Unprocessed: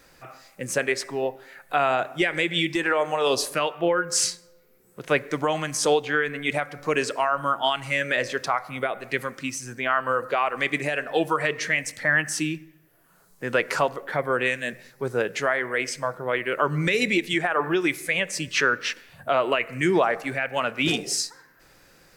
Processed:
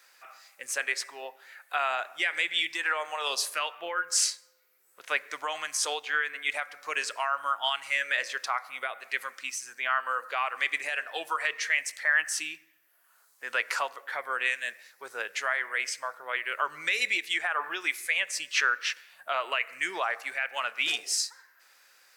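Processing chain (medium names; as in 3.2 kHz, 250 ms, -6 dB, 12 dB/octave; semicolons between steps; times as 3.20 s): high-pass 1.1 kHz 12 dB/octave; trim -2 dB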